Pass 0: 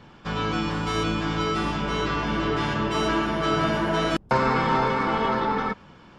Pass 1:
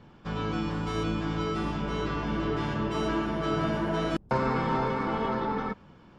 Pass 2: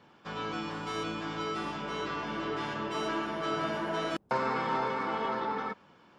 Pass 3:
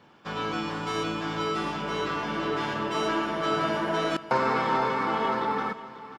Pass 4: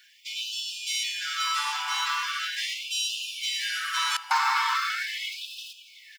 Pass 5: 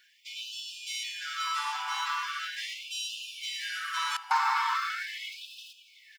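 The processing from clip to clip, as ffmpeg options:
-af "tiltshelf=f=810:g=3.5,volume=0.501"
-af "highpass=f=560:p=1"
-filter_complex "[0:a]asplit=2[s0][s1];[s1]aeval=exprs='sgn(val(0))*max(abs(val(0))-0.00335,0)':c=same,volume=0.376[s2];[s0][s2]amix=inputs=2:normalize=0,aecho=1:1:541|1082|1623|2164:0.158|0.0634|0.0254|0.0101,volume=1.41"
-af "crystalizer=i=5:c=0,afftfilt=real='re*gte(b*sr/1024,750*pow(2500/750,0.5+0.5*sin(2*PI*0.4*pts/sr)))':imag='im*gte(b*sr/1024,750*pow(2500/750,0.5+0.5*sin(2*PI*0.4*pts/sr)))':win_size=1024:overlap=0.75"
-af "tiltshelf=f=1200:g=5.5,volume=0.75"

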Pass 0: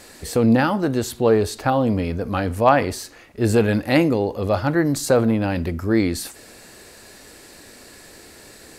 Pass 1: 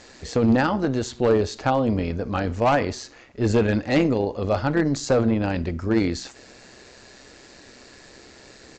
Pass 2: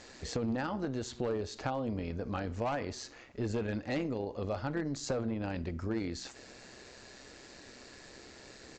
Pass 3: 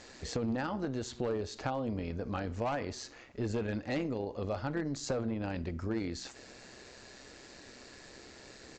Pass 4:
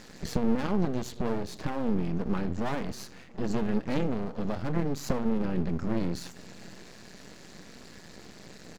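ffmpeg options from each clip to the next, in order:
-af "aresample=16000,asoftclip=type=hard:threshold=0.299,aresample=44100,tremolo=f=130:d=0.462"
-af "acompressor=threshold=0.0355:ratio=3,volume=0.562"
-af anull
-filter_complex "[0:a]equalizer=f=180:w=1.8:g=14.5,aeval=exprs='max(val(0),0)':c=same,asplit=2[s0][s1];[s1]adelay=699.7,volume=0.0501,highshelf=f=4000:g=-15.7[s2];[s0][s2]amix=inputs=2:normalize=0,volume=1.78"

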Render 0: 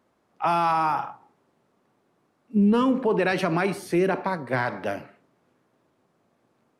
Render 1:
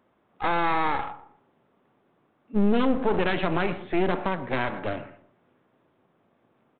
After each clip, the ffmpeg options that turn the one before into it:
-filter_complex "[0:a]aresample=8000,aeval=exprs='clip(val(0),-1,0.0141)':c=same,aresample=44100,asplit=2[s0][s1];[s1]adelay=120,lowpass=f=1600:p=1,volume=0.178,asplit=2[s2][s3];[s3]adelay=120,lowpass=f=1600:p=1,volume=0.31,asplit=2[s4][s5];[s5]adelay=120,lowpass=f=1600:p=1,volume=0.31[s6];[s0][s2][s4][s6]amix=inputs=4:normalize=0,volume=1.19"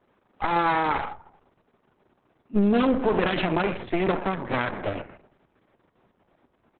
-af "volume=1.33" -ar 48000 -c:a libopus -b:a 6k

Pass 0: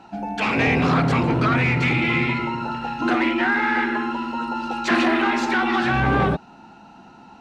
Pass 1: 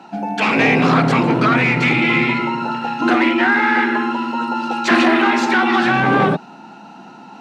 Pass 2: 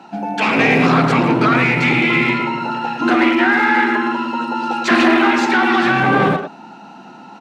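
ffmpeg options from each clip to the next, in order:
-af "highpass=f=150:w=0.5412,highpass=f=150:w=1.3066,areverse,acompressor=mode=upward:threshold=0.0112:ratio=2.5,areverse,volume=1.88"
-filter_complex "[0:a]asplit=2[s0][s1];[s1]adelay=110,highpass=300,lowpass=3400,asoftclip=type=hard:threshold=0.299,volume=0.501[s2];[s0][s2]amix=inputs=2:normalize=0"

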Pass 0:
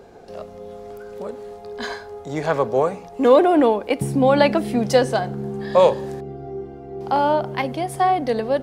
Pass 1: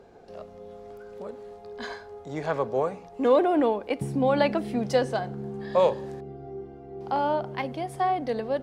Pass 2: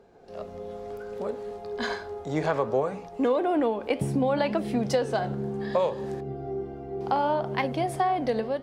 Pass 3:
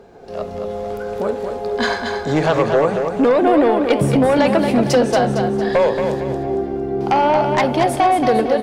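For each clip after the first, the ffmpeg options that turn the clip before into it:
-af "highshelf=f=8300:g=-9,volume=0.447"
-af "dynaudnorm=f=100:g=7:m=3.35,flanger=delay=4.3:depth=10:regen=84:speed=0.66:shape=triangular,acompressor=threshold=0.0891:ratio=6"
-filter_complex "[0:a]aeval=exprs='0.266*sin(PI/2*2*val(0)/0.266)':c=same,asplit=2[s0][s1];[s1]aecho=0:1:228|456|684|912|1140:0.501|0.21|0.0884|0.0371|0.0156[s2];[s0][s2]amix=inputs=2:normalize=0,volume=1.26"

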